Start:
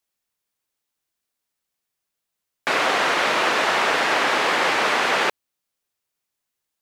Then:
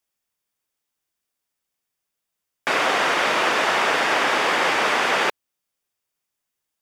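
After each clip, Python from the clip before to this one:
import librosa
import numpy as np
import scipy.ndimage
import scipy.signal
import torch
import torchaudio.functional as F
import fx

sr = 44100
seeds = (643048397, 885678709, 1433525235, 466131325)

y = fx.notch(x, sr, hz=4100.0, q=14.0)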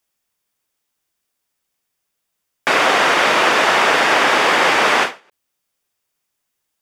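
y = fx.end_taper(x, sr, db_per_s=210.0)
y = y * librosa.db_to_amplitude(6.0)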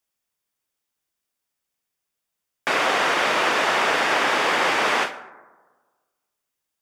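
y = fx.rev_plate(x, sr, seeds[0], rt60_s=1.4, hf_ratio=0.25, predelay_ms=105, drr_db=17.5)
y = y * librosa.db_to_amplitude(-6.5)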